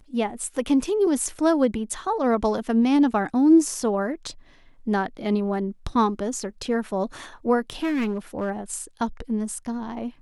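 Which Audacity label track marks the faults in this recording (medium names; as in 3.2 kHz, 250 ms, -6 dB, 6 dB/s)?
7.700000	8.510000	clipped -21 dBFS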